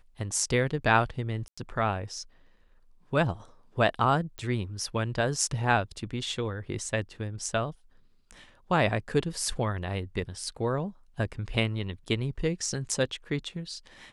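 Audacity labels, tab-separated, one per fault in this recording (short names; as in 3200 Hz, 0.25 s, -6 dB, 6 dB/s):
1.480000	1.570000	gap 95 ms
4.380000	4.380000	pop -26 dBFS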